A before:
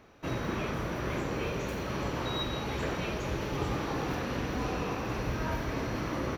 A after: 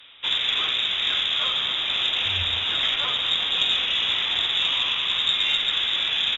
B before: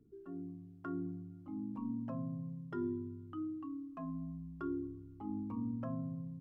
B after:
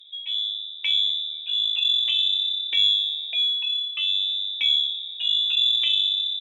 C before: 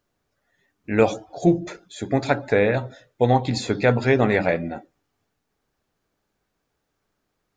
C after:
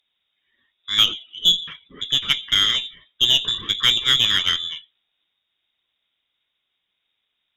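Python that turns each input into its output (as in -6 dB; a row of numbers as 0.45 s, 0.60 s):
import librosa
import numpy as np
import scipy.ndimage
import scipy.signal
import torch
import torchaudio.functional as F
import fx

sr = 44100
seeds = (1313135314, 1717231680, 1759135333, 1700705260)

y = fx.vibrato(x, sr, rate_hz=0.7, depth_cents=21.0)
y = fx.freq_invert(y, sr, carrier_hz=3700)
y = fx.cheby_harmonics(y, sr, harmonics=(6,), levels_db=(-25,), full_scale_db=-2.5)
y = y * 10.0 ** (-24 / 20.0) / np.sqrt(np.mean(np.square(y)))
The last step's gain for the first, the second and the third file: +9.0 dB, +17.5 dB, 0.0 dB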